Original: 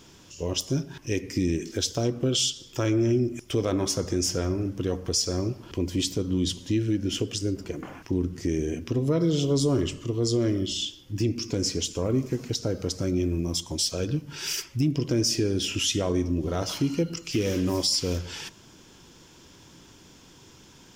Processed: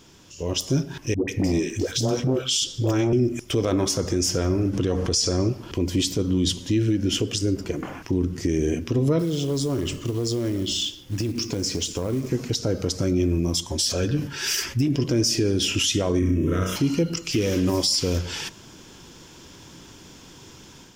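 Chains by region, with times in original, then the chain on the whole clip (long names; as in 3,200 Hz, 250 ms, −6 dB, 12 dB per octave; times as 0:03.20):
0:01.14–0:03.13: all-pass dispersion highs, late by 142 ms, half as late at 510 Hz + saturating transformer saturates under 340 Hz
0:04.73–0:05.49: low-pass filter 10,000 Hz + envelope flattener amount 50%
0:09.19–0:12.30: downward compressor 8 to 1, threshold −27 dBFS + log-companded quantiser 6 bits
0:13.67–0:15.04: parametric band 1,700 Hz +7.5 dB 0.28 octaves + notch comb filter 160 Hz + level that may fall only so fast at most 100 dB per second
0:16.19–0:16.76: phaser with its sweep stopped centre 1,900 Hz, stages 4 + flutter between parallel walls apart 5.6 metres, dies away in 0.62 s
whole clip: brickwall limiter −19 dBFS; automatic gain control gain up to 6 dB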